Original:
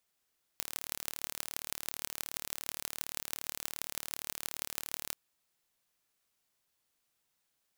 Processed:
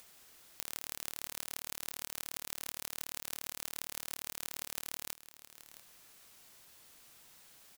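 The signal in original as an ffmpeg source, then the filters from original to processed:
-f lavfi -i "aevalsrc='0.473*eq(mod(n,1182),0)*(0.5+0.5*eq(mod(n,7092),0))':d=4.53:s=44100"
-filter_complex "[0:a]asplit=2[a][b];[b]acompressor=mode=upward:threshold=-40dB:ratio=2.5,volume=-2dB[c];[a][c]amix=inputs=2:normalize=0,alimiter=limit=-10dB:level=0:latency=1:release=456,aecho=1:1:666:0.2"

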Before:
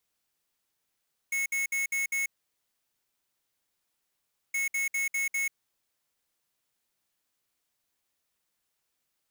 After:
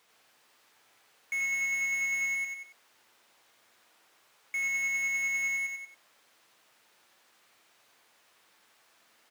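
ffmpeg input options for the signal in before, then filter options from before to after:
-f lavfi -i "aevalsrc='0.0355*(2*lt(mod(2190*t,1),0.5)-1)*clip(min(mod(mod(t,3.22),0.2),0.14-mod(mod(t,3.22),0.2))/0.005,0,1)*lt(mod(t,3.22),1)':d=6.44:s=44100"
-filter_complex "[0:a]asplit=2[a][b];[b]aecho=0:1:95|190|285|380:0.562|0.157|0.0441|0.0123[c];[a][c]amix=inputs=2:normalize=0,asplit=2[d][e];[e]highpass=f=720:p=1,volume=28dB,asoftclip=type=tanh:threshold=-23.5dB[f];[d][f]amix=inputs=2:normalize=0,lowpass=f=1.7k:p=1,volume=-6dB,asplit=2[g][h];[h]aecho=0:1:86:0.631[i];[g][i]amix=inputs=2:normalize=0"

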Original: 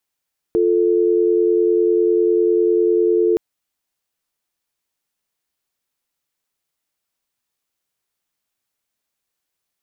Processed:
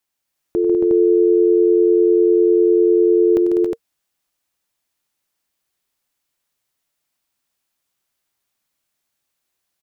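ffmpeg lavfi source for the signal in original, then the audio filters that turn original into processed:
-f lavfi -i "aevalsrc='0.168*(sin(2*PI*350*t)+sin(2*PI*440*t))':d=2.82:s=44100"
-filter_complex "[0:a]bandreject=f=460:w=12,asplit=2[a][b];[b]aecho=0:1:95|146|199|275|290|361:0.251|0.422|0.422|0.596|0.178|0.668[c];[a][c]amix=inputs=2:normalize=0"

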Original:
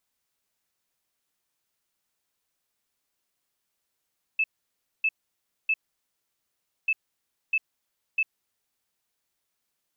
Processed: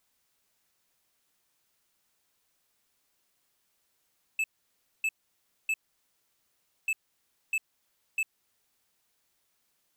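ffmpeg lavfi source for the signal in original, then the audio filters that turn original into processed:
-f lavfi -i "aevalsrc='0.1*sin(2*PI*2620*t)*clip(min(mod(mod(t,2.49),0.65),0.05-mod(mod(t,2.49),0.65))/0.005,0,1)*lt(mod(t,2.49),1.95)':d=4.98:s=44100"
-filter_complex "[0:a]asplit=2[a][b];[b]alimiter=level_in=6dB:limit=-24dB:level=0:latency=1:release=280,volume=-6dB,volume=-1dB[c];[a][c]amix=inputs=2:normalize=0,asoftclip=type=tanh:threshold=-26.5dB"

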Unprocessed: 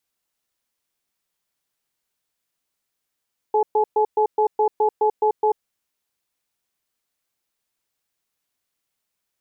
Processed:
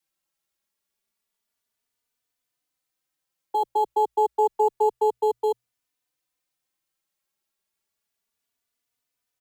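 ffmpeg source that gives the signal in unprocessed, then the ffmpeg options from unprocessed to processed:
-f lavfi -i "aevalsrc='0.133*(sin(2*PI*429*t)+sin(2*PI*852*t))*clip(min(mod(t,0.21),0.09-mod(t,0.21))/0.005,0,1)':d=2.05:s=44100"
-filter_complex "[0:a]bandreject=f=60:t=h:w=6,bandreject=f=120:t=h:w=6,acrossover=split=240|360|570[a][b][c][d];[b]acrusher=samples=12:mix=1:aa=0.000001[e];[a][e][c][d]amix=inputs=4:normalize=0,asplit=2[f][g];[g]adelay=3.3,afreqshift=0.29[h];[f][h]amix=inputs=2:normalize=1"

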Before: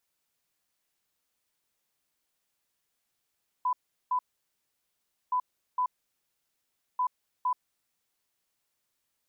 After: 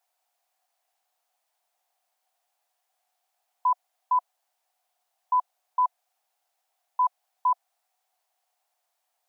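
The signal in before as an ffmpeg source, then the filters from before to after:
-f lavfi -i "aevalsrc='0.0631*sin(2*PI*1000*t)*clip(min(mod(mod(t,1.67),0.46),0.08-mod(mod(t,1.67),0.46))/0.005,0,1)*lt(mod(t,1.67),0.92)':d=5.01:s=44100"
-af "highpass=f=730:t=q:w=8.7"

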